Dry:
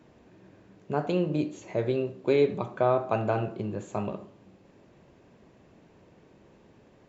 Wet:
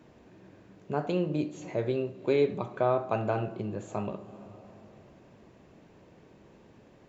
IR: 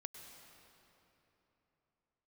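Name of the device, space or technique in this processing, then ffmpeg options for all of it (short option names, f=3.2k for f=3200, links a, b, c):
ducked reverb: -filter_complex "[0:a]asplit=3[a][b][c];[1:a]atrim=start_sample=2205[d];[b][d]afir=irnorm=-1:irlink=0[e];[c]apad=whole_len=312491[f];[e][f]sidechaincompress=threshold=-45dB:ratio=8:attack=8.2:release=157,volume=-1.5dB[g];[a][g]amix=inputs=2:normalize=0,volume=-2.5dB"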